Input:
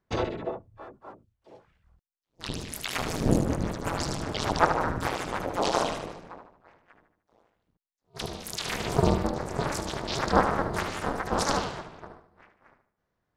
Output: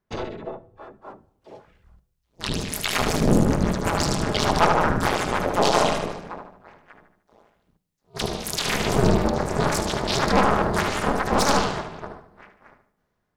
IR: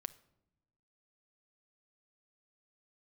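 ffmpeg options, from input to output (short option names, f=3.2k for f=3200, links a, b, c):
-filter_complex "[0:a]aeval=exprs='(tanh(8.91*val(0)+0.35)-tanh(0.35))/8.91':c=same,dynaudnorm=f=460:g=5:m=10dB[a];[1:a]atrim=start_sample=2205,asetrate=57330,aresample=44100[b];[a][b]afir=irnorm=-1:irlink=0,volume=5dB"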